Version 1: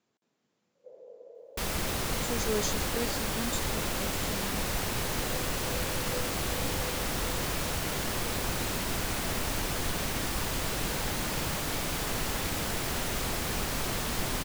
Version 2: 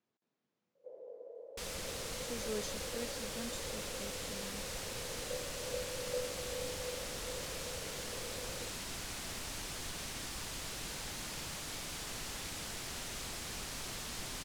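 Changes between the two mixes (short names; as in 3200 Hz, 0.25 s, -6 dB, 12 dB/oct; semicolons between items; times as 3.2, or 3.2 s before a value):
speech -8.5 dB; second sound: add pre-emphasis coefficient 0.8; master: add air absorption 63 m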